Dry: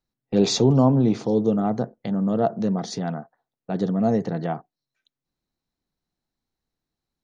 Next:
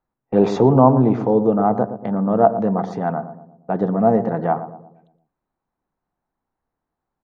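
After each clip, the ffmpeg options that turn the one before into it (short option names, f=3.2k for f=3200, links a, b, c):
-filter_complex "[0:a]firequalizer=gain_entry='entry(150,0);entry(900,11);entry(2200,-2);entry(4300,-17)':delay=0.05:min_phase=1,asplit=2[a][b];[b]adelay=117,lowpass=f=830:p=1,volume=-10dB,asplit=2[c][d];[d]adelay=117,lowpass=f=830:p=1,volume=0.52,asplit=2[e][f];[f]adelay=117,lowpass=f=830:p=1,volume=0.52,asplit=2[g][h];[h]adelay=117,lowpass=f=830:p=1,volume=0.52,asplit=2[i][j];[j]adelay=117,lowpass=f=830:p=1,volume=0.52,asplit=2[k][l];[l]adelay=117,lowpass=f=830:p=1,volume=0.52[m];[c][e][g][i][k][m]amix=inputs=6:normalize=0[n];[a][n]amix=inputs=2:normalize=0,volume=1dB"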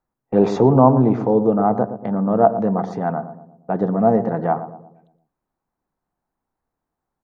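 -af "equalizer=f=3.2k:w=1.5:g=-3"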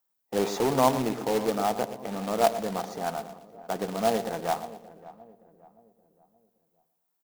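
-filter_complex "[0:a]aemphasis=mode=production:type=riaa,acrusher=bits=2:mode=log:mix=0:aa=0.000001,asplit=2[a][b];[b]adelay=572,lowpass=f=1k:p=1,volume=-17dB,asplit=2[c][d];[d]adelay=572,lowpass=f=1k:p=1,volume=0.45,asplit=2[e][f];[f]adelay=572,lowpass=f=1k:p=1,volume=0.45,asplit=2[g][h];[h]adelay=572,lowpass=f=1k:p=1,volume=0.45[i];[a][c][e][g][i]amix=inputs=5:normalize=0,volume=-7dB"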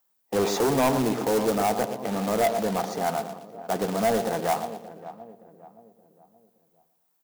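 -filter_complex "[0:a]highpass=75,acrossover=split=5500[a][b];[a]asoftclip=type=tanh:threshold=-24dB[c];[b]alimiter=level_in=4.5dB:limit=-24dB:level=0:latency=1:release=117,volume=-4.5dB[d];[c][d]amix=inputs=2:normalize=0,volume=6.5dB"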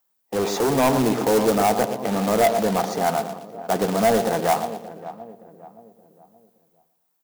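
-af "dynaudnorm=f=170:g=9:m=5dB"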